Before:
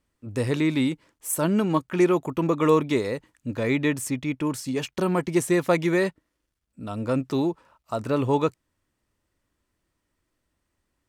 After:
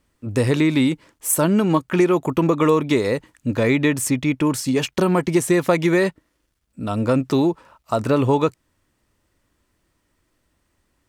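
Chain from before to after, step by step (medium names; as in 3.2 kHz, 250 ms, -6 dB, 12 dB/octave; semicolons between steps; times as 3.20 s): compression 3:1, threshold -23 dBFS, peak gain reduction 7 dB; trim +8.5 dB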